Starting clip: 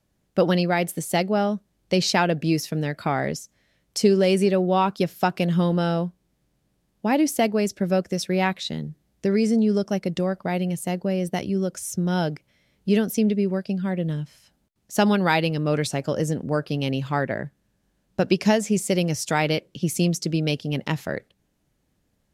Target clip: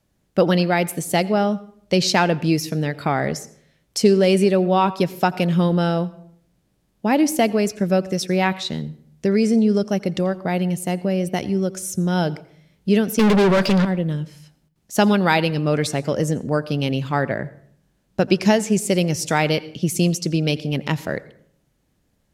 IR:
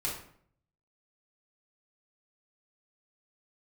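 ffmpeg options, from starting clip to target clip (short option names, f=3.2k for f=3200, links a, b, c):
-filter_complex "[0:a]asettb=1/sr,asplit=3[a][b][c];[a]atrim=end=13.194[d];[b]atrim=start=13.19:end=13.85,asetpts=PTS-STARTPTS,afade=t=in:d=0.004:c=qsin,afade=t=out:st=0.656:d=0.004:c=qsin,asplit=2[e][f];[f]highpass=f=720:p=1,volume=37dB,asoftclip=type=tanh:threshold=-12dB[g];[e][g]amix=inputs=2:normalize=0,lowpass=f=2.9k:p=1,volume=-6dB[h];[c]atrim=start=13.846[i];[d][h]acrossfade=d=0.004:c1=hsin:c2=qsin[j];[j][i]acrossfade=d=0.004:c1=qsin:c2=hsin,asplit=2[k][l];[l]lowpass=12k[m];[1:a]atrim=start_sample=2205,adelay=83[n];[m][n]afir=irnorm=-1:irlink=0,volume=-22.5dB[o];[k][o]amix=inputs=2:normalize=0,volume=3dB"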